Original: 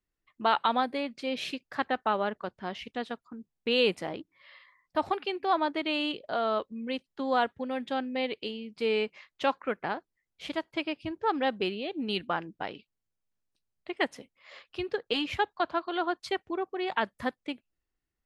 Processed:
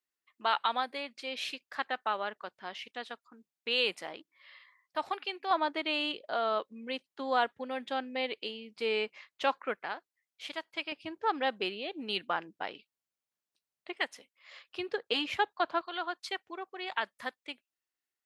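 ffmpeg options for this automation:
ffmpeg -i in.wav -af "asetnsamples=nb_out_samples=441:pad=0,asendcmd='5.51 highpass f 550;9.75 highpass f 1400;10.92 highpass f 600;13.99 highpass f 1500;14.68 highpass f 440;15.81 highpass f 1400',highpass=frequency=1200:poles=1" out.wav

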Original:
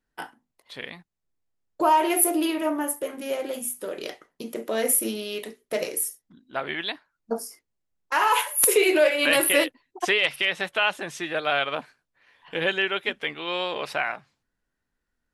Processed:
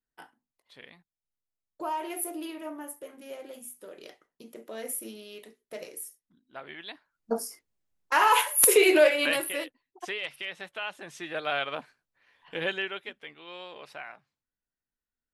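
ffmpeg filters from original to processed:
ffmpeg -i in.wav -af "volume=7dB,afade=type=in:start_time=6.86:duration=0.53:silence=0.223872,afade=type=out:start_time=9.03:duration=0.43:silence=0.237137,afade=type=in:start_time=10.91:duration=0.51:silence=0.446684,afade=type=out:start_time=12.67:duration=0.47:silence=0.334965" out.wav

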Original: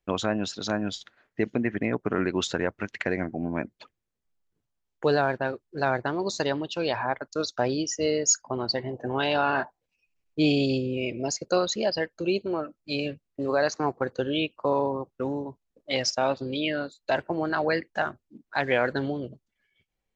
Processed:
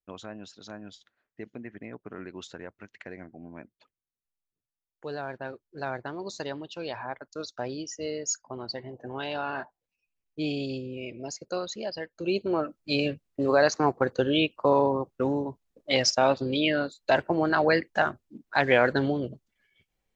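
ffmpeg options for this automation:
ffmpeg -i in.wav -af "volume=3dB,afade=type=in:start_time=5.05:duration=0.47:silence=0.473151,afade=type=in:start_time=12.09:duration=0.52:silence=0.281838" out.wav

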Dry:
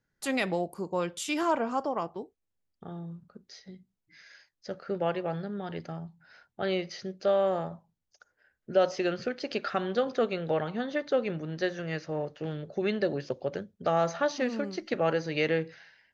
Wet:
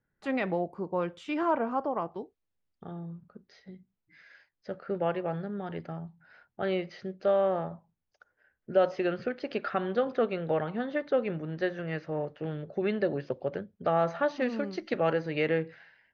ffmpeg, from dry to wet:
ffmpeg -i in.wav -af "asetnsamples=nb_out_samples=441:pad=0,asendcmd='2.12 lowpass f 4300;2.91 lowpass f 2600;14.42 lowpass f 4300;15.13 lowpass f 2600',lowpass=2000" out.wav

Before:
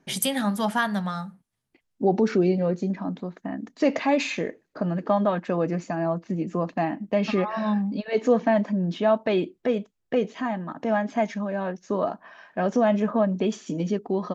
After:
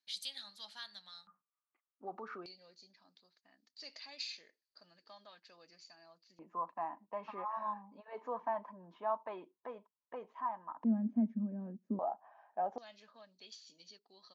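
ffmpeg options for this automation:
ffmpeg -i in.wav -af "asetnsamples=nb_out_samples=441:pad=0,asendcmd='1.27 bandpass f 1200;2.46 bandpass f 4600;6.39 bandpass f 990;10.84 bandpass f 230;11.99 bandpass f 790;12.78 bandpass f 4400',bandpass=frequency=4200:width_type=q:width=8.4:csg=0" out.wav

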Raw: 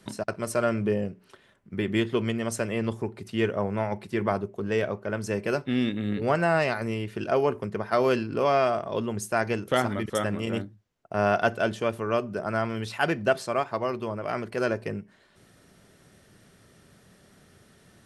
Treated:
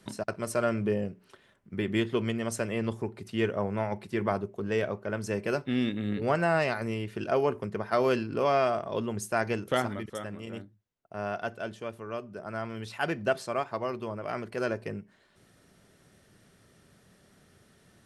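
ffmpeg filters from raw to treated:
ffmpeg -i in.wav -af "volume=4dB,afade=type=out:start_time=9.69:duration=0.49:silence=0.398107,afade=type=in:start_time=12.3:duration=0.96:silence=0.473151" out.wav

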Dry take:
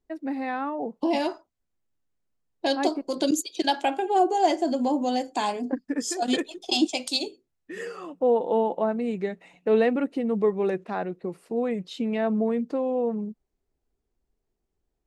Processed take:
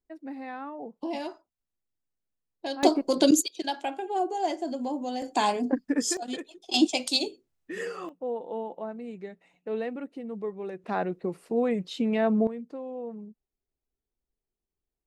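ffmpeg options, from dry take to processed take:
ffmpeg -i in.wav -af "asetnsamples=nb_out_samples=441:pad=0,asendcmd='2.83 volume volume 4dB;3.48 volume volume -7dB;5.22 volume volume 2dB;6.17 volume volume -10dB;6.74 volume volume 1dB;8.09 volume volume -11dB;10.84 volume volume 1dB;12.47 volume volume -11dB',volume=-8.5dB" out.wav

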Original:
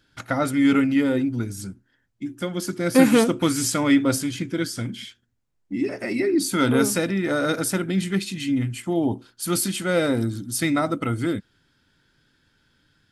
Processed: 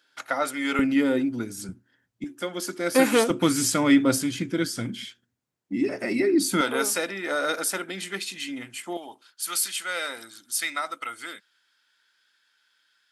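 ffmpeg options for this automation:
ffmpeg -i in.wav -af "asetnsamples=nb_out_samples=441:pad=0,asendcmd='0.79 highpass f 230;1.69 highpass f 99;2.24 highpass f 370;3.3 highpass f 140;6.61 highpass f 550;8.97 highpass f 1200',highpass=550" out.wav

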